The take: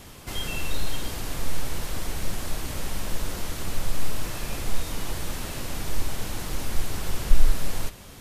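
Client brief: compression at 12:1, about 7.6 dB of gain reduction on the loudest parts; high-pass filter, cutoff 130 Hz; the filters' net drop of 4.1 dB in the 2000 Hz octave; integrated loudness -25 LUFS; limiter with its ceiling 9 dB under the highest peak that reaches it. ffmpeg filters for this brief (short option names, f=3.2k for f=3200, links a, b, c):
-af "highpass=130,equalizer=f=2k:t=o:g=-5.5,acompressor=threshold=-40dB:ratio=12,volume=22dB,alimiter=limit=-17dB:level=0:latency=1"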